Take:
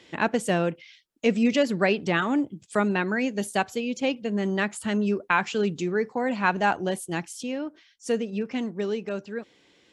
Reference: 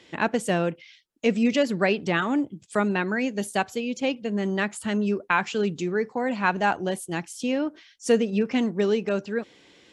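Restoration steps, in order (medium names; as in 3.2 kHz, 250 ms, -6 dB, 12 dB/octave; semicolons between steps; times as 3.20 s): gain correction +5.5 dB, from 7.43 s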